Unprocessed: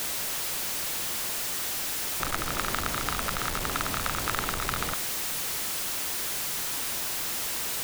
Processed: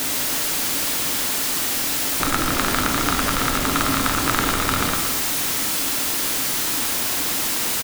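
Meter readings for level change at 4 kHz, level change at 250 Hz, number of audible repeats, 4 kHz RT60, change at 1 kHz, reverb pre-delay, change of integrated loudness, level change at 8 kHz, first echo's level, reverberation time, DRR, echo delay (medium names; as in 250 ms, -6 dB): +9.0 dB, +14.5 dB, 1, 1.3 s, +9.0 dB, 6 ms, +8.5 dB, +8.5 dB, -10.5 dB, 1.3 s, 3.5 dB, 115 ms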